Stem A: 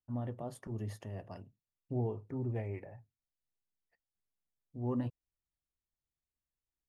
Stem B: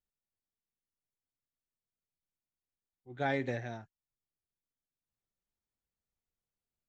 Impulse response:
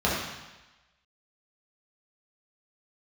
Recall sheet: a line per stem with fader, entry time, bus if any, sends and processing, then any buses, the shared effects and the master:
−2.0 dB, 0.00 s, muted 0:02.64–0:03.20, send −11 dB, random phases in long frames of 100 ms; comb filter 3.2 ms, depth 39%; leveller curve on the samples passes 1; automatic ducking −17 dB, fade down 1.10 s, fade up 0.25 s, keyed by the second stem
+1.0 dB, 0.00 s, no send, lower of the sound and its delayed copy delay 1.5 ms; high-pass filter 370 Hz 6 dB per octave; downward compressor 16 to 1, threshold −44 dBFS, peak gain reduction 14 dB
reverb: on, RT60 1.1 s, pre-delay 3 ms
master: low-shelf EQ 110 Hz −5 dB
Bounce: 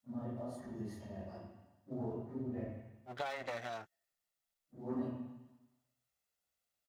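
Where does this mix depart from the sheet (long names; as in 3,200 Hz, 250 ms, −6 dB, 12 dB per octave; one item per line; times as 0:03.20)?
stem A −2.0 dB → −12.5 dB
stem B +1.0 dB → +7.5 dB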